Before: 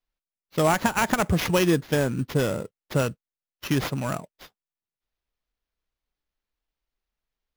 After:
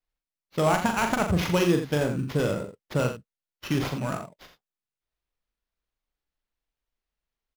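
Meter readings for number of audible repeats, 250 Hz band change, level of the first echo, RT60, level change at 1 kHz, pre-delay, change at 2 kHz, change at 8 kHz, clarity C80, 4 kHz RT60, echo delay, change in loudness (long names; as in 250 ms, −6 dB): 2, −1.0 dB, −6.0 dB, no reverb audible, −1.0 dB, no reverb audible, −2.5 dB, −4.5 dB, no reverb audible, no reverb audible, 40 ms, −1.5 dB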